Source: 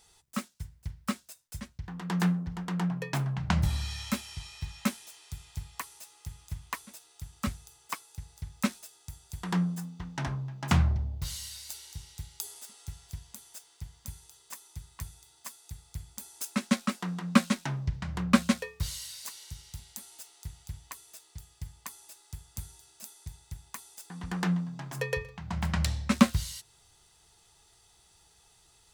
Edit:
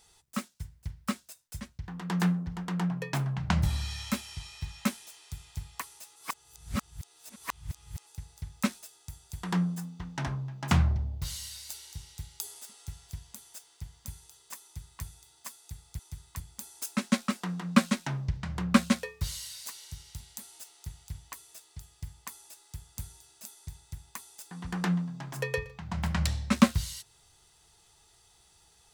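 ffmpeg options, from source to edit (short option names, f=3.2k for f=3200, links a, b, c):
-filter_complex "[0:a]asplit=5[a][b][c][d][e];[a]atrim=end=6.162[f];[b]atrim=start=6.158:end=8.072,asetpts=PTS-STARTPTS,areverse[g];[c]atrim=start=8.068:end=15.992[h];[d]atrim=start=14.628:end=15.042[i];[e]atrim=start=15.988[j];[f][g]acrossfade=d=0.004:c1=hsin:c2=hsin[k];[k][h]acrossfade=d=0.004:c1=hsin:c2=hsin[l];[l][i]acrossfade=d=0.004:c1=hsin:c2=hsin[m];[m][j]acrossfade=d=0.004:c1=hsin:c2=hsin"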